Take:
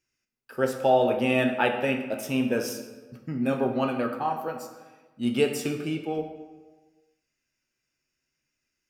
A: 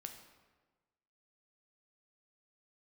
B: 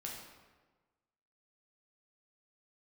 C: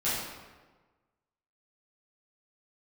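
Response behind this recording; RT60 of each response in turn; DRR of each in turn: A; 1.3, 1.3, 1.3 seconds; 4.5, −3.0, −12.5 decibels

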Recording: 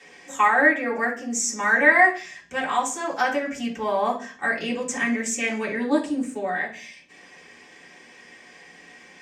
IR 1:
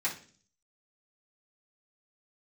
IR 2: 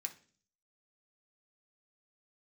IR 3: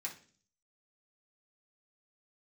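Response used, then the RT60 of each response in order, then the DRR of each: 1; 0.45, 0.45, 0.45 seconds; −11.0, 2.0, −5.0 decibels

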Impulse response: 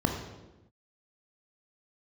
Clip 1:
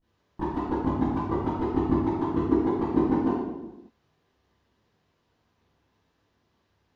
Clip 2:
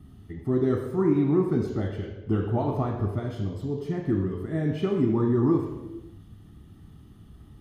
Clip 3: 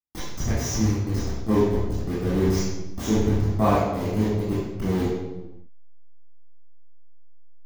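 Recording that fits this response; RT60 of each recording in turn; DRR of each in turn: 2; non-exponential decay, non-exponential decay, non-exponential decay; −19.0, 0.5, −9.0 decibels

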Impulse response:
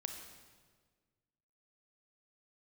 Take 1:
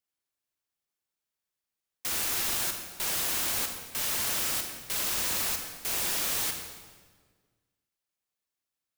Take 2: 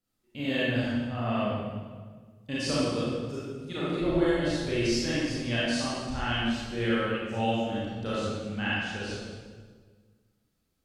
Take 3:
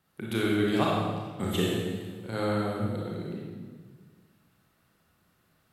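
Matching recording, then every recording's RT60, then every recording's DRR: 1; 1.6, 1.6, 1.6 seconds; 4.5, −9.0, −4.5 decibels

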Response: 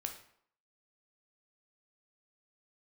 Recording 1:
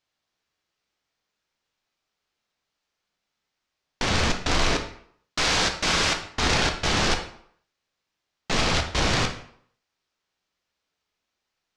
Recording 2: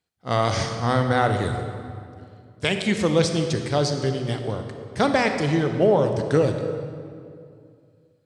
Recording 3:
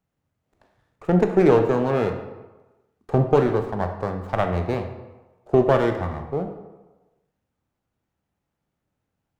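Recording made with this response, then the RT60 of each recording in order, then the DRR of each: 1; 0.65, 2.4, 1.2 seconds; 4.0, 5.5, 5.0 decibels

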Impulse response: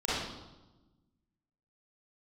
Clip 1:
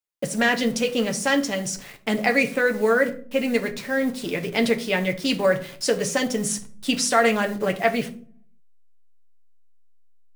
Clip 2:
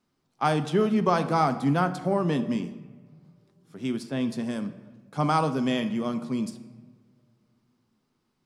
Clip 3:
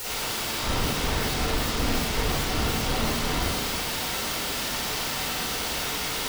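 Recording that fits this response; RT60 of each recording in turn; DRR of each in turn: 3; 0.50 s, non-exponential decay, 1.1 s; 4.0, 9.0, −9.5 decibels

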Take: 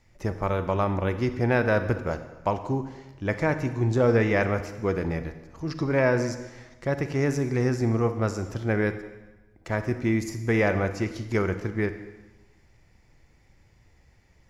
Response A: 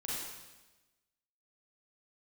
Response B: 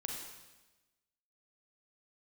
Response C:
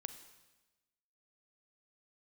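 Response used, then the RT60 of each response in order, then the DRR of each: C; 1.1, 1.1, 1.1 seconds; −7.0, 0.0, 9.5 decibels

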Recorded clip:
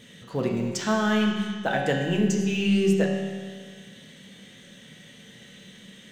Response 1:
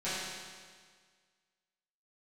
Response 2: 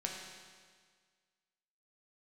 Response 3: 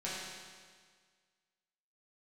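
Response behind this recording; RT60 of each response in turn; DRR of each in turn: 2; 1.7, 1.7, 1.7 seconds; −14.0, −1.5, −9.0 decibels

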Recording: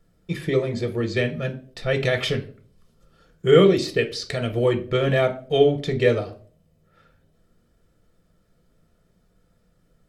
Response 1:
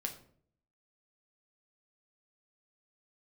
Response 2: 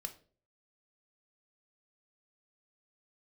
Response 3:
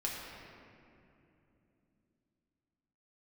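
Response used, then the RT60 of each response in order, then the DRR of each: 2; 0.55, 0.45, 2.9 seconds; 3.0, 6.0, −4.0 decibels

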